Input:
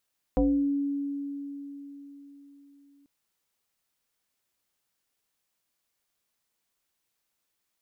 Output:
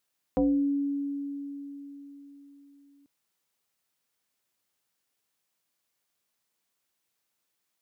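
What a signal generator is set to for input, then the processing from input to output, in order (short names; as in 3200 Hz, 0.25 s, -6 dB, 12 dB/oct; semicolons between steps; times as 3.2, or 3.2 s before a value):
FM tone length 2.69 s, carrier 282 Hz, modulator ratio 0.82, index 1.7, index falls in 0.51 s exponential, decay 4.18 s, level -19 dB
HPF 87 Hz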